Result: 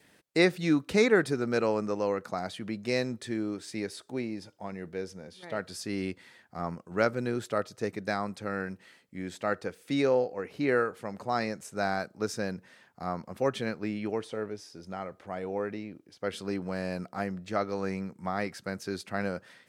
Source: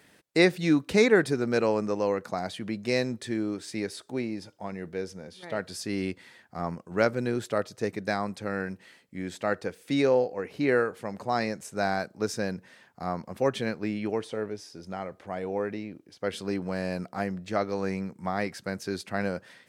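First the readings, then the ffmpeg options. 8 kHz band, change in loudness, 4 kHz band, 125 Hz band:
−2.5 dB, −2.5 dB, −2.5 dB, −2.5 dB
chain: -af "adynamicequalizer=threshold=0.00355:dfrequency=1300:dqfactor=7.4:tfrequency=1300:tqfactor=7.4:attack=5:release=100:ratio=0.375:range=2.5:mode=boostabove:tftype=bell,volume=-2.5dB"

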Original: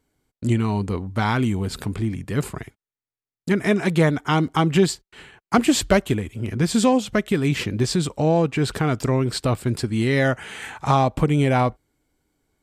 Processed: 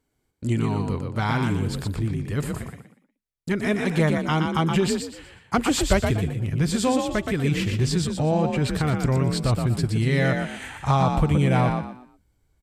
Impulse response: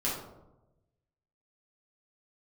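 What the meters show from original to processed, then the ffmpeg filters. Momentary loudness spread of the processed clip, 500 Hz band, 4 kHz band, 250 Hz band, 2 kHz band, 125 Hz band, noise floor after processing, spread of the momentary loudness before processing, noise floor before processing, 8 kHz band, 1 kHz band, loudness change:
8 LU, −3.5 dB, −2.0 dB, −2.5 dB, −2.0 dB, +0.5 dB, −74 dBFS, 8 LU, below −85 dBFS, −2.0 dB, −2.5 dB, −2.0 dB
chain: -filter_complex "[0:a]asubboost=boost=4:cutoff=110,asplit=5[link_01][link_02][link_03][link_04][link_05];[link_02]adelay=120,afreqshift=41,volume=-5dB[link_06];[link_03]adelay=240,afreqshift=82,volume=-15.5dB[link_07];[link_04]adelay=360,afreqshift=123,volume=-25.9dB[link_08];[link_05]adelay=480,afreqshift=164,volume=-36.4dB[link_09];[link_01][link_06][link_07][link_08][link_09]amix=inputs=5:normalize=0,volume=-3.5dB"

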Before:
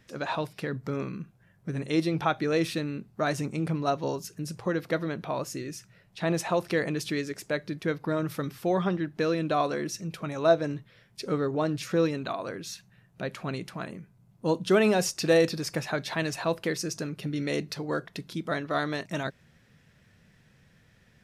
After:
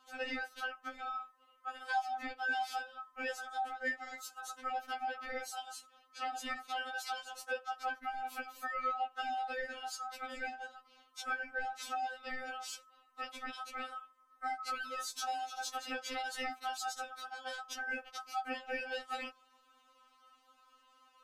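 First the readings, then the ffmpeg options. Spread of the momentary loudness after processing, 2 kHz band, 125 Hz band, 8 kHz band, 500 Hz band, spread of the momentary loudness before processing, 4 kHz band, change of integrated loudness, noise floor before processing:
9 LU, −3.5 dB, below −40 dB, −8.0 dB, −19.5 dB, 13 LU, −6.5 dB, −10.5 dB, −62 dBFS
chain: -af "aeval=exprs='val(0)*sin(2*PI*1100*n/s)':channel_layout=same,acompressor=threshold=-32dB:ratio=10,afftfilt=real='re*3.46*eq(mod(b,12),0)':imag='im*3.46*eq(mod(b,12),0)':win_size=2048:overlap=0.75"

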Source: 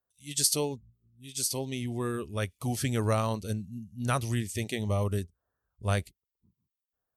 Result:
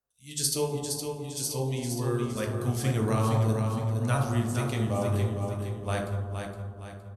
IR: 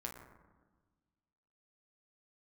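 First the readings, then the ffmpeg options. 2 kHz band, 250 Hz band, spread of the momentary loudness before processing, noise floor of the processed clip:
+0.5 dB, +3.5 dB, 10 LU, −46 dBFS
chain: -filter_complex "[0:a]aecho=1:1:465|930|1395|1860|2325:0.501|0.216|0.0927|0.0398|0.0171[link_01];[1:a]atrim=start_sample=2205,asetrate=31752,aresample=44100[link_02];[link_01][link_02]afir=irnorm=-1:irlink=0"

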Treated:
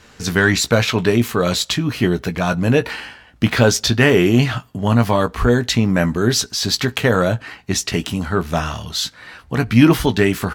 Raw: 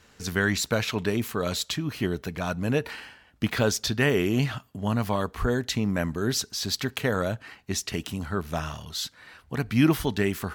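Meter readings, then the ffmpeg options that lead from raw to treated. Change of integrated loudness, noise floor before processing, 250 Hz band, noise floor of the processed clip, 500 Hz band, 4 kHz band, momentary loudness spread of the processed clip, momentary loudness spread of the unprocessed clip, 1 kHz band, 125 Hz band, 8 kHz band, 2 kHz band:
+10.0 dB, −58 dBFS, +10.0 dB, −48 dBFS, +10.0 dB, +10.0 dB, 9 LU, 10 LU, +10.0 dB, +10.5 dB, +9.0 dB, +10.0 dB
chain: -filter_complex "[0:a]acontrast=81,highshelf=frequency=12000:gain=-8.5,asplit=2[link_01][link_02];[link_02]adelay=17,volume=-9dB[link_03];[link_01][link_03]amix=inputs=2:normalize=0,volume=3dB"

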